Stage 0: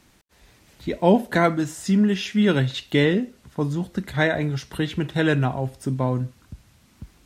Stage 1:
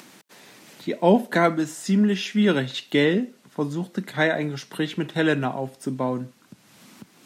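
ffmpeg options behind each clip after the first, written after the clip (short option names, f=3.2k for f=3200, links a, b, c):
-af "highpass=f=170:w=0.5412,highpass=f=170:w=1.3066,acompressor=mode=upward:threshold=-39dB:ratio=2.5"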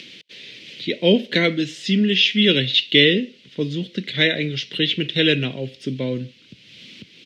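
-af "firequalizer=gain_entry='entry(100,0);entry(200,-6);entry(500,-3);entry(770,-24);entry(1200,-19);entry(2100,3);entry(3100,11);entry(7400,-14);entry(11000,-24)':delay=0.05:min_phase=1,volume=6.5dB"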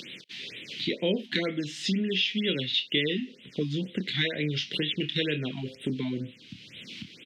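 -filter_complex "[0:a]acompressor=threshold=-28dB:ratio=3,asplit=2[a][b];[b]adelay=27,volume=-9dB[c];[a][c]amix=inputs=2:normalize=0,afftfilt=real='re*(1-between(b*sr/1024,450*pow(5800/450,0.5+0.5*sin(2*PI*2.1*pts/sr))/1.41,450*pow(5800/450,0.5+0.5*sin(2*PI*2.1*pts/sr))*1.41))':imag='im*(1-between(b*sr/1024,450*pow(5800/450,0.5+0.5*sin(2*PI*2.1*pts/sr))/1.41,450*pow(5800/450,0.5+0.5*sin(2*PI*2.1*pts/sr))*1.41))':win_size=1024:overlap=0.75"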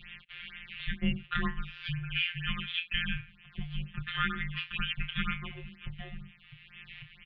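-af "adynamicequalizer=threshold=0.00398:dfrequency=1500:dqfactor=2:tfrequency=1500:tqfactor=2:attack=5:release=100:ratio=0.375:range=3:mode=boostabove:tftype=bell,afftfilt=real='hypot(re,im)*cos(PI*b)':imag='0':win_size=1024:overlap=0.75,highpass=f=200:t=q:w=0.5412,highpass=f=200:t=q:w=1.307,lowpass=f=3.4k:t=q:w=0.5176,lowpass=f=3.4k:t=q:w=0.7071,lowpass=f=3.4k:t=q:w=1.932,afreqshift=-320"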